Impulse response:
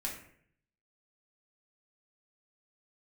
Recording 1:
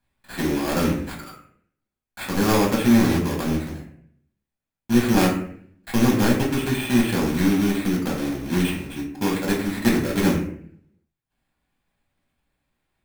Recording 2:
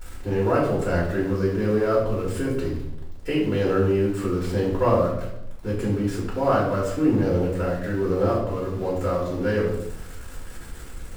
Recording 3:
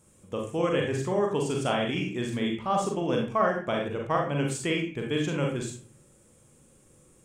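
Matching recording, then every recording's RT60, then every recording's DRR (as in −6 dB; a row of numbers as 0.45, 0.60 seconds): 1; 0.60, 0.85, 0.40 seconds; −2.5, −6.5, 0.0 decibels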